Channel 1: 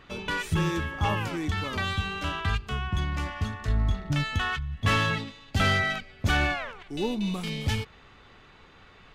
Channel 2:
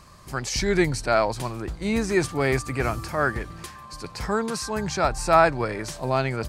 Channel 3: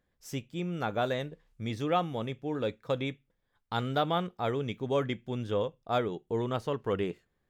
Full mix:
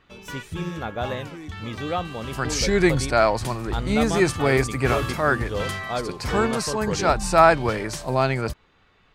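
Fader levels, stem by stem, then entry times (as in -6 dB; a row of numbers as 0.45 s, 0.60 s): -7.0 dB, +2.5 dB, +1.0 dB; 0.00 s, 2.05 s, 0.00 s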